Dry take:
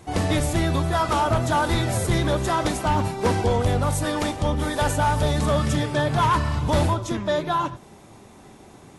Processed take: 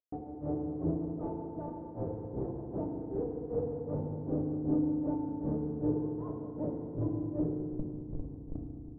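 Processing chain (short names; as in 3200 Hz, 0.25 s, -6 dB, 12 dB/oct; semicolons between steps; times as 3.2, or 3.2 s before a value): HPF 170 Hz 12 dB/oct; compressor 4:1, threshold -28 dBFS, peak gain reduction 9.5 dB; Schmitt trigger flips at -39 dBFS; grains 0.203 s, grains 2.6/s, pitch spread up and down by 0 st; ladder low-pass 600 Hz, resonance 25%; pre-echo 0.197 s -15.5 dB; FDN reverb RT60 2.2 s, low-frequency decay 1.3×, high-frequency decay 0.85×, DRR -1 dB; gain +5 dB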